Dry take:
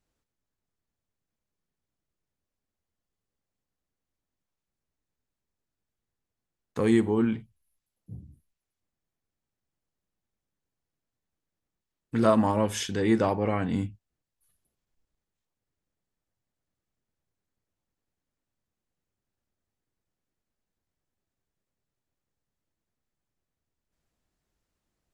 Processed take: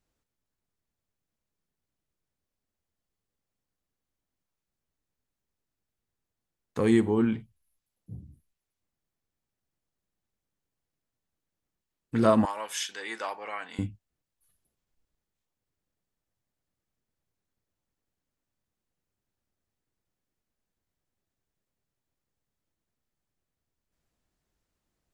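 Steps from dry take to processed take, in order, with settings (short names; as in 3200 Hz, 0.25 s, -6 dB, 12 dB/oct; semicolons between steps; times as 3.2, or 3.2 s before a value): 12.45–13.79 HPF 1100 Hz 12 dB/oct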